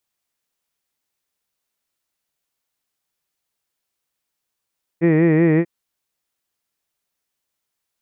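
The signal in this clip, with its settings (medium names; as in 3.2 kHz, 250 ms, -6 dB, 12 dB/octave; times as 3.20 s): formant vowel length 0.64 s, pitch 162 Hz, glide 0 st, F1 390 Hz, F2 1.9 kHz, F3 2.4 kHz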